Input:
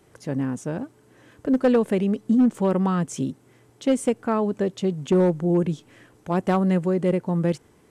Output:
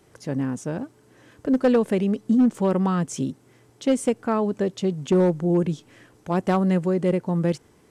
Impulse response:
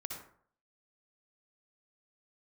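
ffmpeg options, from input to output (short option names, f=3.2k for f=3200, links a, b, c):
-af "equalizer=f=5.2k:t=o:w=0.77:g=3"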